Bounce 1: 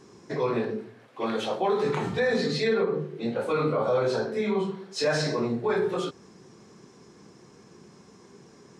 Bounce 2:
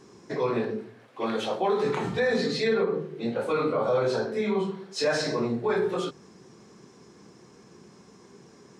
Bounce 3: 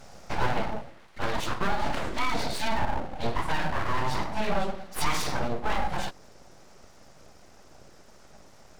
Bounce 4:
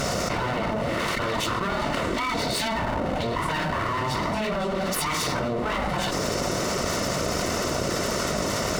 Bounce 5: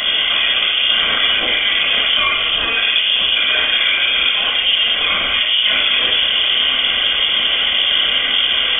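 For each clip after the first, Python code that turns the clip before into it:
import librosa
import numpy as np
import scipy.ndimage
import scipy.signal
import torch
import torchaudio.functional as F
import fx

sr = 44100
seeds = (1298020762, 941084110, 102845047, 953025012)

y1 = fx.hum_notches(x, sr, base_hz=50, count=3)
y2 = fx.rider(y1, sr, range_db=5, speed_s=0.5)
y2 = np.abs(y2)
y2 = F.gain(torch.from_numpy(y2), 2.0).numpy()
y3 = fx.notch_comb(y2, sr, f0_hz=820.0)
y3 = fx.env_flatten(y3, sr, amount_pct=100)
y4 = fx.room_shoebox(y3, sr, seeds[0], volume_m3=2600.0, walls='furnished', distance_m=4.5)
y4 = fx.freq_invert(y4, sr, carrier_hz=3400)
y4 = F.gain(torch.from_numpy(y4), 5.0).numpy()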